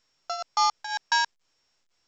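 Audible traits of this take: a buzz of ramps at a fixed pitch in blocks of 8 samples; tremolo triangle 2 Hz, depth 85%; A-law

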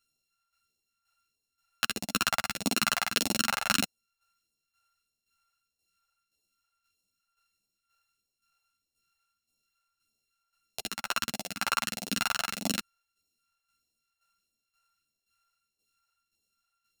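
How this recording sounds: a buzz of ramps at a fixed pitch in blocks of 32 samples; phasing stages 2, 1.6 Hz, lowest notch 260–1400 Hz; tremolo saw down 1.9 Hz, depth 65%; a shimmering, thickened sound

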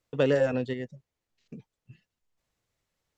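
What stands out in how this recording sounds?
noise floor -87 dBFS; spectral tilt -6.0 dB/oct

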